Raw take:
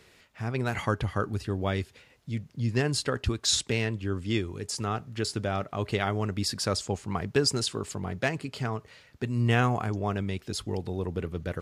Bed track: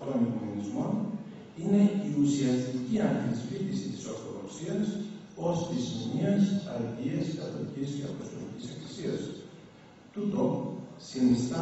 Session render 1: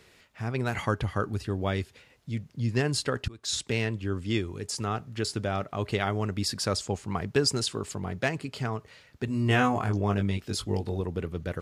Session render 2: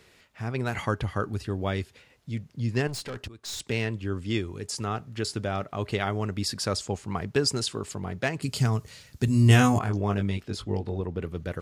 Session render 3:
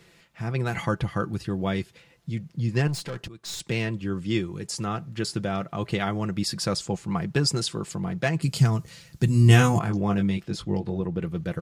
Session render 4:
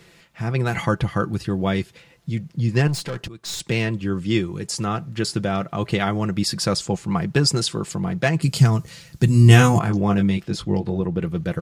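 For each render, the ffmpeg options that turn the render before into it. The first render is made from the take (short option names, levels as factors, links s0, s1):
-filter_complex "[0:a]asettb=1/sr,asplit=3[s0][s1][s2];[s0]atrim=end=9.264[s3];[s1]atrim=start=9.26:end=11.01,asetpts=PTS-STARTPTS,afade=t=in:d=0.004:c=qsin,afade=t=out:st=1.746:d=0.004:c=qsin,asplit=2[s4][s5];[s5]adelay=20,volume=0.668[s6];[s4][s6]amix=inputs=2:normalize=0,atrim=end_sample=77175[s7];[s2]atrim=start=11.006[s8];[s3][s7]acrossfade=d=0.004:c1=hsin:c2=qsin[s9];[s9][s8]acrossfade=d=0.004:c1=qsin:c2=hsin,asplit=2[s10][s11];[s10]atrim=end=3.28,asetpts=PTS-STARTPTS,afade=t=out:st=3.276:d=0.004:c=hsin:silence=0.0749894[s12];[s11]atrim=start=3.28,asetpts=PTS-STARTPTS,afade=t=in:d=0.49:silence=0.0749894[s13];[s12][s13]concat=n=2:v=0:a=1"
-filter_complex "[0:a]asettb=1/sr,asplit=3[s0][s1][s2];[s0]atrim=end=2.874[s3];[s1]atrim=start=2.87:end=3.6,asetpts=PTS-STARTPTS,afade=t=in:d=0.004:c=qsin,afade=t=out:st=0.726:d=0.004:c=qsin,aeval=exprs='(tanh(39.8*val(0)+0.25)-tanh(0.25))/39.8':c=same[s4];[s2]atrim=start=3.596[s5];[s3][s4]acrossfade=d=0.004:c1=hsin:c2=qsin[s6];[s6][s5]acrossfade=d=0.004:c1=qsin:c2=hsin,asettb=1/sr,asplit=3[s7][s8][s9];[s7]atrim=end=8.424[s10];[s8]atrim=start=8.42:end=9.79,asetpts=PTS-STARTPTS,afade=t=in:d=0.004:c=qsin,afade=t=out:st=1.366:d=0.004:c=qsin,bass=f=250:g=10,treble=f=4000:g=15[s11];[s9]atrim=start=9.786[s12];[s10][s11]acrossfade=d=0.004:c1=hsin:c2=qsin[s13];[s13][s12]acrossfade=d=0.004:c1=qsin:c2=hsin,asettb=1/sr,asplit=3[s14][s15][s16];[s14]atrim=end=10.434[s17];[s15]atrim=start=10.43:end=11.22,asetpts=PTS-STARTPTS,afade=t=in:d=0.004:c=qsin,afade=t=out:st=0.786:d=0.004:c=qsin,lowpass=f=3000:p=1[s18];[s16]atrim=start=11.216[s19];[s17][s18]acrossfade=d=0.004:c1=hsin:c2=qsin[s20];[s20][s19]acrossfade=d=0.004:c1=qsin:c2=hsin"
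-af "equalizer=f=160:t=o:w=0.94:g=6,aecho=1:1:5.9:0.48"
-af "volume=1.78,alimiter=limit=0.794:level=0:latency=1"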